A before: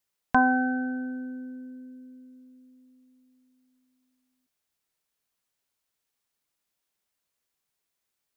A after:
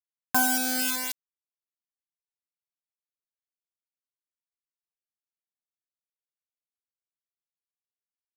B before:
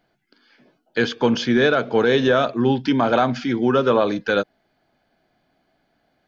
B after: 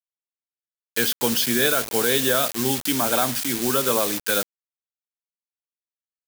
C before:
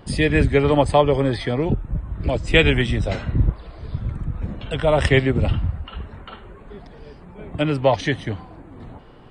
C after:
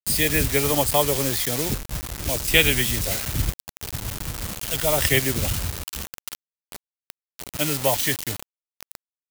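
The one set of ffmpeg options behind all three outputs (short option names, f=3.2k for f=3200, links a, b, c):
-af "acrusher=bits=4:mix=0:aa=0.000001,crystalizer=i=5:c=0,volume=-7dB"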